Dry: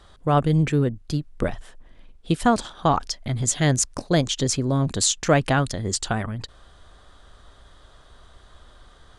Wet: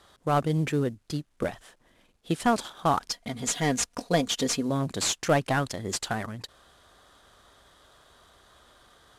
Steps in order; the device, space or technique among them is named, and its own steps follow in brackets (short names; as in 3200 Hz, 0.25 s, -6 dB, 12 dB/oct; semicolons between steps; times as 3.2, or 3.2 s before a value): early wireless headset (HPF 220 Hz 6 dB/oct; CVSD 64 kbps); 3.11–4.7 comb 4.2 ms, depth 60%; gain -2.5 dB